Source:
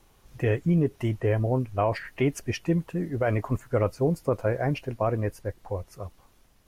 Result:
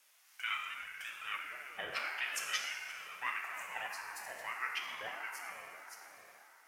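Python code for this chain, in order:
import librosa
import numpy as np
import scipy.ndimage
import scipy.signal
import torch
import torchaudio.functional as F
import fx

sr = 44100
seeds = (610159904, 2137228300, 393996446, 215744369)

y = scipy.signal.sosfilt(scipy.signal.cheby2(4, 50, 570.0, 'highpass', fs=sr, output='sos'), x)
y = fx.peak_eq(y, sr, hz=3600.0, db=-10.0, octaves=0.2)
y = fx.rev_plate(y, sr, seeds[0], rt60_s=4.2, hf_ratio=0.35, predelay_ms=0, drr_db=-2.0)
y = fx.ring_lfo(y, sr, carrier_hz=430.0, swing_pct=30, hz=1.6)
y = y * 10.0 ** (2.0 / 20.0)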